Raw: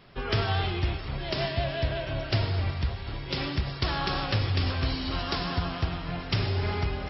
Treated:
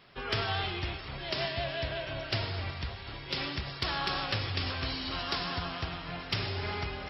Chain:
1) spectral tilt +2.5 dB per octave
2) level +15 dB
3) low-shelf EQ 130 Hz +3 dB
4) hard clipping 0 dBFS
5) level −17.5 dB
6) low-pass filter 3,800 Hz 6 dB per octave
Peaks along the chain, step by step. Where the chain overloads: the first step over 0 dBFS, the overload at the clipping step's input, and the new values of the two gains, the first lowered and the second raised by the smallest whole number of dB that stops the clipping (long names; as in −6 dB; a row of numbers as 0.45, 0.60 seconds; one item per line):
−11.0, +4.0, +4.0, 0.0, −17.5, −18.0 dBFS
step 2, 4.0 dB
step 2 +11 dB, step 5 −13.5 dB